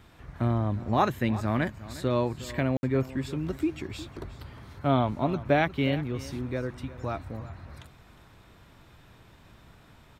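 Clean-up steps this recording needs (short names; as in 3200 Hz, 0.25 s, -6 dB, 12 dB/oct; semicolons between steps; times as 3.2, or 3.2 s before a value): room tone fill 2.77–2.83; inverse comb 0.359 s -16.5 dB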